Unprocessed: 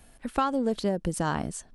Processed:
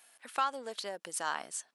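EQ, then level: Bessel high-pass 1.2 kHz, order 2; 0.0 dB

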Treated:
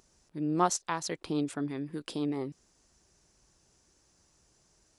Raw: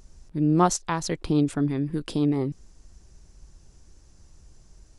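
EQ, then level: high-pass 410 Hz 6 dB/octave; -4.0 dB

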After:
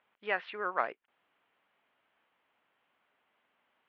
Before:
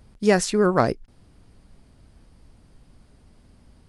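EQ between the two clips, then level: high-pass 980 Hz 12 dB/octave; steep low-pass 3.2 kHz 48 dB/octave; -5.5 dB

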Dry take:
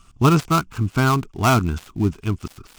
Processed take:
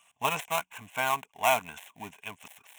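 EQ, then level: high-pass 650 Hz 12 dB/octave; static phaser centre 1.3 kHz, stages 6; 0.0 dB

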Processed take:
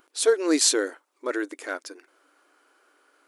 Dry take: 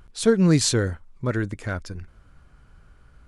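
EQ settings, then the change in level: brick-wall FIR high-pass 270 Hz; treble shelf 9.2 kHz +10 dB; 0.0 dB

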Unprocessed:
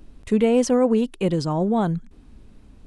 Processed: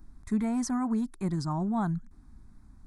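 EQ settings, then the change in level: static phaser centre 1.2 kHz, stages 4; -4.5 dB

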